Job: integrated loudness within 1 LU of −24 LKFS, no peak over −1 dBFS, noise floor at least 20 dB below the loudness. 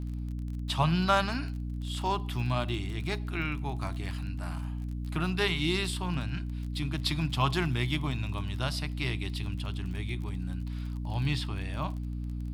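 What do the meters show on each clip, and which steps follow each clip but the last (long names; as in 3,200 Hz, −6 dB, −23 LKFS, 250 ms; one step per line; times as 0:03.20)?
crackle rate 27 per second; mains hum 60 Hz; hum harmonics up to 300 Hz; level of the hum −32 dBFS; integrated loudness −32.0 LKFS; sample peak −11.5 dBFS; target loudness −24.0 LKFS
→ click removal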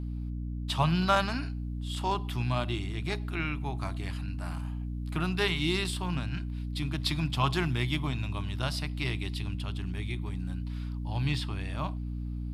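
crackle rate 0 per second; mains hum 60 Hz; hum harmonics up to 300 Hz; level of the hum −32 dBFS
→ hum removal 60 Hz, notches 5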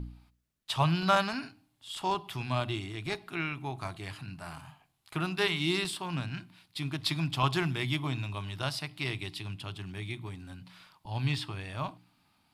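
mains hum none found; integrated loudness −33.0 LKFS; sample peak −11.5 dBFS; target loudness −24.0 LKFS
→ level +9 dB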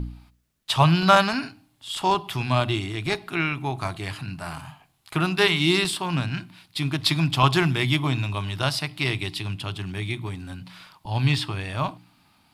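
integrated loudness −24.0 LKFS; sample peak −2.5 dBFS; background noise floor −65 dBFS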